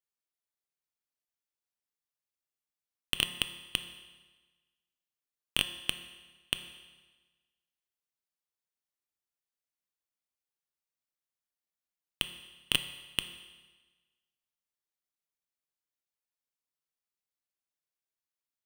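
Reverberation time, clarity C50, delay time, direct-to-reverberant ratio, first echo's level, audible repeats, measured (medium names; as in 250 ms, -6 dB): 1.3 s, 11.0 dB, no echo, 9.0 dB, no echo, no echo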